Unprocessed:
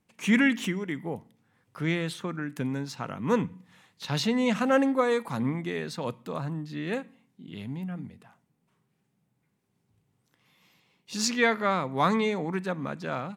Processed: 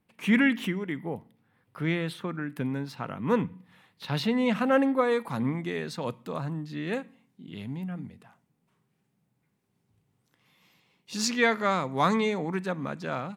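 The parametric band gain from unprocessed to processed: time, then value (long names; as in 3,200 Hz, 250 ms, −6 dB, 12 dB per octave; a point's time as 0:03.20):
parametric band 6,700 Hz 0.78 octaves
0:05.01 −11.5 dB
0:05.55 −1.5 dB
0:11.33 −1.5 dB
0:11.69 +9.5 dB
0:12.34 +0.5 dB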